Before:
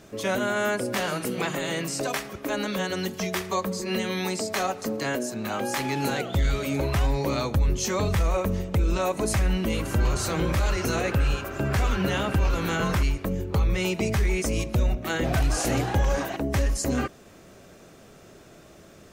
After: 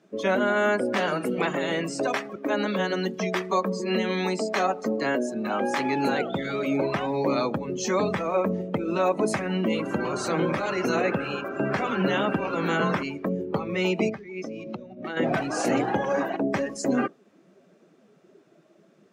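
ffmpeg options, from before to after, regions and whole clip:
ffmpeg -i in.wav -filter_complex "[0:a]asettb=1/sr,asplit=3[link_01][link_02][link_03];[link_01]atrim=end=14.094[link_04];[link_02]atrim=start=14.09:end=15.17,asetpts=PTS-STARTPTS,afade=type=in:duration=0.004:curve=qsin,afade=type=out:start_time=1.076:duration=0.004:curve=qsin,highshelf=frequency=6700:width_type=q:width=1.5:gain=-8.5,acompressor=threshold=-30dB:ratio=16:attack=3.2:release=140:knee=1:detection=peak[link_05];[link_03]atrim=start=15.166[link_06];[link_04][link_05]acrossfade=duration=0.004:curve1=hsin:curve2=qsin[link_07];[link_07][link_06]acrossfade=duration=0.004:curve1=qsin:curve2=hsin,afftdn=noise_reduction=15:noise_floor=-37,highpass=frequency=180:width=0.5412,highpass=frequency=180:width=1.3066,aemphasis=mode=reproduction:type=50kf,volume=3.5dB" out.wav

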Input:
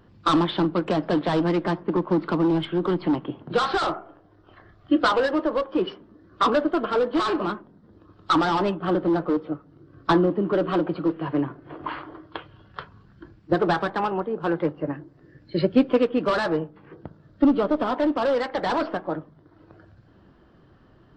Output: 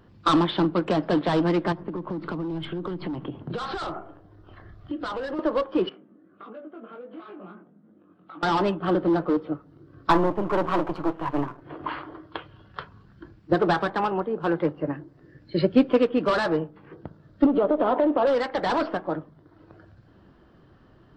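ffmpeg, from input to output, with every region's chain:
ffmpeg -i in.wav -filter_complex "[0:a]asettb=1/sr,asplit=3[link_01][link_02][link_03];[link_01]atrim=end=1.724[link_04];[link_02]atrim=start=1.72:end=5.39,asetpts=PTS-STARTPTS,afade=type=in:duration=0.004:curve=qsin,afade=type=out:start_time=3.666:duration=0.004:curve=qsin,lowshelf=frequency=160:gain=10.5,acompressor=threshold=-27dB:ratio=12:attack=3.2:release=140:knee=1:detection=peak[link_05];[link_03]atrim=start=5.386[link_06];[link_04][link_05]acrossfade=duration=0.004:curve1=hsin:curve2=qsin[link_07];[link_07][link_06]acrossfade=duration=0.004:curve1=qsin:curve2=hsin,asettb=1/sr,asplit=3[link_08][link_09][link_10];[link_08]atrim=end=5.894[link_11];[link_09]atrim=start=5.89:end=8.43,asetpts=PTS-STARTPTS,afade=type=in:duration=0.004:curve=qsin,afade=type=out:start_time=2.536:duration=0.004:curve=qsin,acompressor=threshold=-35dB:ratio=8:attack=3.2:release=140:knee=1:detection=peak,flanger=delay=18.5:depth=3.6:speed=1.5,highpass=frequency=170:width=0.5412,highpass=frequency=170:width=1.3066,equalizer=frequency=190:width_type=q:width=4:gain=4,equalizer=frequency=410:width_type=q:width=4:gain=-3,equalizer=frequency=980:width_type=q:width=4:gain=-9,equalizer=frequency=1800:width_type=q:width=4:gain=-6,lowpass=frequency=2600:width=0.5412,lowpass=frequency=2600:width=1.3066[link_12];[link_10]atrim=start=8.426[link_13];[link_11][link_12]acrossfade=duration=0.004:curve1=hsin:curve2=qsin[link_14];[link_14][link_13]acrossfade=duration=0.004:curve1=qsin:curve2=hsin,asettb=1/sr,asplit=3[link_15][link_16][link_17];[link_15]atrim=end=10.104[link_18];[link_16]atrim=start=10.1:end=11.62,asetpts=PTS-STARTPTS,afade=type=in:duration=0.004:curve=qsin,afade=type=out:start_time=1.516:duration=0.004:curve=qsin,aeval=exprs='if(lt(val(0),0),0.251*val(0),val(0))':channel_layout=same,equalizer=frequency=1000:width_type=o:width=0.76:gain=9[link_19];[link_17]atrim=start=11.616[link_20];[link_18][link_19]acrossfade=duration=0.004:curve1=hsin:curve2=qsin[link_21];[link_21][link_20]acrossfade=duration=0.004:curve1=qsin:curve2=hsin,asettb=1/sr,asplit=3[link_22][link_23][link_24];[link_22]atrim=end=17.464[link_25];[link_23]atrim=start=17.46:end=18.27,asetpts=PTS-STARTPTS,afade=type=in:duration=0.004:curve=qsin,afade=type=out:start_time=0.806:duration=0.004:curve=qsin,lowpass=frequency=3800:width=0.5412,lowpass=frequency=3800:width=1.3066,equalizer=frequency=540:width=0.73:gain=10.5,acompressor=threshold=-17dB:ratio=10:attack=3.2:release=140:knee=1:detection=peak[link_26];[link_24]atrim=start=18.266[link_27];[link_25][link_26]acrossfade=duration=0.004:curve1=hsin:curve2=qsin[link_28];[link_28][link_27]acrossfade=duration=0.004:curve1=qsin:curve2=hsin" out.wav

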